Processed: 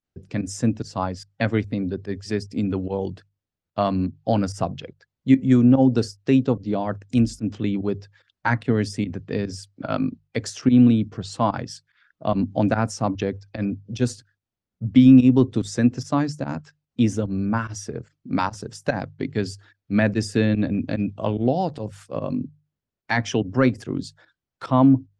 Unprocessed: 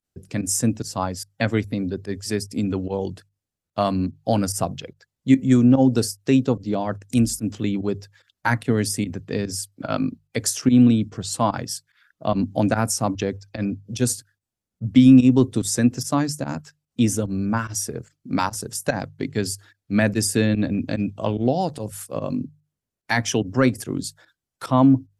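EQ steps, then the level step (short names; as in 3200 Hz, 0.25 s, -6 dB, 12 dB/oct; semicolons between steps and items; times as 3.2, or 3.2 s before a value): air absorption 130 m; 0.0 dB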